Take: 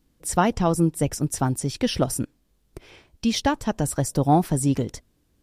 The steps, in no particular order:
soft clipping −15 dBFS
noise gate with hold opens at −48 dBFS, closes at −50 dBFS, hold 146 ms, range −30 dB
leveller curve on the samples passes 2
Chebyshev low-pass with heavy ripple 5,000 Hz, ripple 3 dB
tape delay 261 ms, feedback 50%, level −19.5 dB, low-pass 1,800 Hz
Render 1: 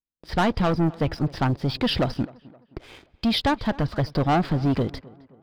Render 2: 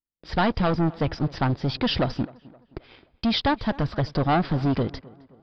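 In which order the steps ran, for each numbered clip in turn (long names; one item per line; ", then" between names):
soft clipping, then Chebyshev low-pass with heavy ripple, then noise gate with hold, then leveller curve on the samples, then tape delay
leveller curve on the samples, then soft clipping, then Chebyshev low-pass with heavy ripple, then tape delay, then noise gate with hold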